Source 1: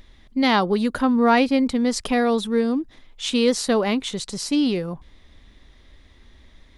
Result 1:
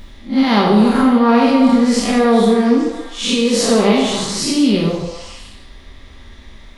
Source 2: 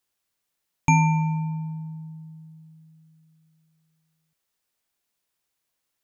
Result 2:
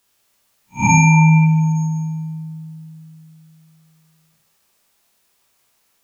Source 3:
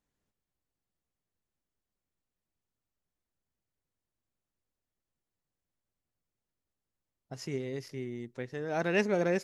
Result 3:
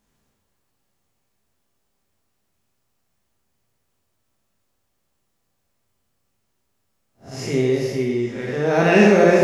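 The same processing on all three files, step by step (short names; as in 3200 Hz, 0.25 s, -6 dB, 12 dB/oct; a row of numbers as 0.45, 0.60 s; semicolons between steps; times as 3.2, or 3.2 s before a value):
time blur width 0.14 s; limiter -19 dBFS; delay with a stepping band-pass 0.143 s, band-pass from 540 Hz, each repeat 0.7 oct, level -4 dB; non-linear reverb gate 0.24 s falling, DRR -1 dB; normalise peaks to -1.5 dBFS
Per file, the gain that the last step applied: +10.0, +14.0, +14.5 dB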